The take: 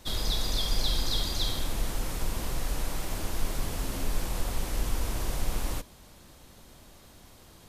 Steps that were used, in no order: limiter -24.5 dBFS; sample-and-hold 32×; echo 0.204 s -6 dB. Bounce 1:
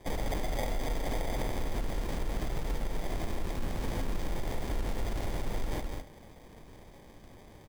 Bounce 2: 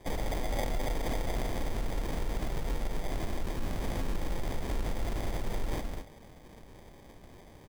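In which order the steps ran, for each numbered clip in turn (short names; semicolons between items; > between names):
sample-and-hold > echo > limiter; echo > sample-and-hold > limiter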